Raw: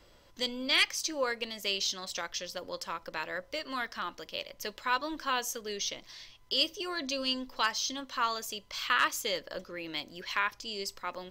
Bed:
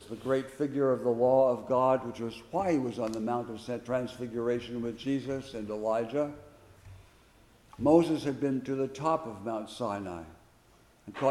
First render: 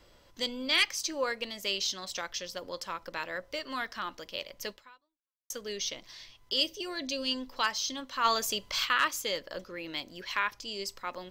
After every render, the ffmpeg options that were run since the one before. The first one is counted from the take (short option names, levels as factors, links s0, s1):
-filter_complex "[0:a]asettb=1/sr,asplit=3[s0][s1][s2];[s0]atrim=end=6.604[s3];[s1]atrim=start=6.6:end=7.31,asetpts=PTS-STARTPTS,afade=t=in:d=0.004:c=qsin,afade=t=out:st=0.706:d=0.004:c=qsin,equalizer=f=1200:w=2.1:g=-8[s4];[s2]atrim=start=7.306[s5];[s3][s4]acrossfade=d=0.004:c1=hsin:c2=qsin[s6];[s6][s5]acrossfade=d=0.004:c1=qsin:c2=hsin,asplit=3[s7][s8][s9];[s7]afade=t=out:st=8.24:d=0.02[s10];[s8]acontrast=77,afade=t=in:st=8.24:d=0.02,afade=t=out:st=8.84:d=0.02[s11];[s9]afade=t=in:st=8.84:d=0.02[s12];[s10][s11][s12]amix=inputs=3:normalize=0,asplit=2[s13][s14];[s13]atrim=end=5.5,asetpts=PTS-STARTPTS,afade=t=out:st=4.71:d=0.79:c=exp[s15];[s14]atrim=start=5.5,asetpts=PTS-STARTPTS,afade=t=in:d=0.004:c=hsin[s16];[s15][s16]concat=n=2:v=0:a=1"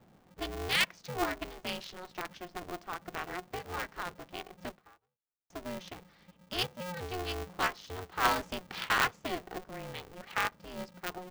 -af "adynamicsmooth=sensitivity=1.5:basefreq=1200,aeval=exprs='val(0)*sgn(sin(2*PI*180*n/s))':c=same"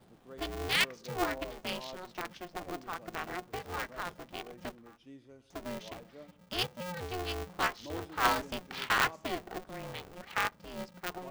-filter_complex "[1:a]volume=0.0891[s0];[0:a][s0]amix=inputs=2:normalize=0"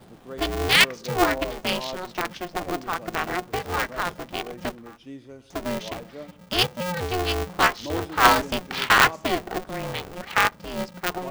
-af "volume=3.76"